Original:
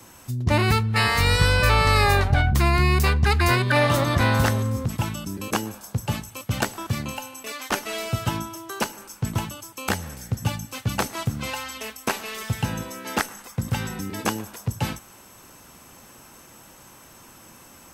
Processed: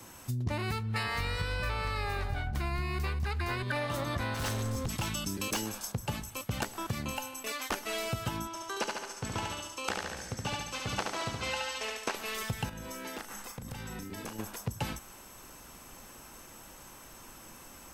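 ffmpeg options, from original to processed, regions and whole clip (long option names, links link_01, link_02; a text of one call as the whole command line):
ffmpeg -i in.wav -filter_complex "[0:a]asettb=1/sr,asplit=3[link_01][link_02][link_03];[link_01]atrim=end=1.034[link_04];[link_02]atrim=start=1.03:end=3.63,asetpts=PTS-STARTPTS,afade=type=in:duration=0.004:curve=qsin,afade=type=out:start_time=2.596:duration=0.004:curve=qsin,acrossover=split=4500[link_05][link_06];[link_06]acompressor=threshold=-40dB:ratio=4:attack=1:release=60[link_07];[link_05][link_07]amix=inputs=2:normalize=0,highshelf=frequency=7000:gain=5.5,aecho=1:1:202:0.282,atrim=end_sample=114660[link_08];[link_03]atrim=start=3.626[link_09];[link_04][link_08]acrossfade=duration=0.004:curve1=hsin:curve2=qsin[link_10];[link_10][link_09]acrossfade=duration=0.004:curve1=qsin:curve2=hsin,asettb=1/sr,asplit=3[link_11][link_12][link_13];[link_11]atrim=end=4.344[link_14];[link_12]atrim=start=4.34:end=5.92,asetpts=PTS-STARTPTS,afade=type=in:duration=0.004:curve=qsin,afade=type=out:start_time=1.576:duration=0.004:curve=qsin,equalizer=frequency=4800:width_type=o:width=2.6:gain=7.5,volume=21.5dB,asoftclip=hard,volume=-21.5dB[link_15];[link_13]atrim=start=5.916[link_16];[link_14][link_15]acrossfade=duration=0.004:curve1=hsin:curve2=qsin[link_17];[link_17][link_16]acrossfade=duration=0.004:curve1=qsin:curve2=hsin,asettb=1/sr,asplit=3[link_18][link_19][link_20];[link_18]atrim=end=8.474[link_21];[link_19]atrim=start=8.47:end=12.15,asetpts=PTS-STARTPTS,afade=type=in:duration=0.004:curve=qsin,afade=type=out:start_time=3.676:duration=0.004:curve=qsin,lowpass=6200,bass=frequency=250:gain=-10,treble=frequency=4000:gain=2,aecho=1:1:71|142|213|284|355|426:0.708|0.34|0.163|0.0783|0.0376|0.018,atrim=end_sample=162288[link_22];[link_20]atrim=start=12.146[link_23];[link_21][link_22]acrossfade=duration=0.004:curve1=hsin:curve2=qsin[link_24];[link_24][link_23]acrossfade=duration=0.004:curve1=qsin:curve2=hsin,asettb=1/sr,asplit=3[link_25][link_26][link_27];[link_25]atrim=end=12.694[link_28];[link_26]atrim=start=12.69:end=14.39,asetpts=PTS-STARTPTS,afade=type=in:duration=0.004:curve=qsin,afade=type=out:start_time=1.696:duration=0.004:curve=qsin,acompressor=threshold=-34dB:ratio=12:attack=3.2:release=140:knee=1:detection=peak,asplit=2[link_29][link_30];[link_30]adelay=38,volume=-8.5dB[link_31];[link_29][link_31]amix=inputs=2:normalize=0,atrim=end_sample=74970[link_32];[link_27]atrim=start=14.386[link_33];[link_28][link_32]acrossfade=duration=0.004:curve1=hsin:curve2=qsin[link_34];[link_34][link_33]acrossfade=duration=0.004:curve1=qsin:curve2=hsin,asubboost=boost=3.5:cutoff=51,acompressor=threshold=-27dB:ratio=12,volume=-2.5dB" out.wav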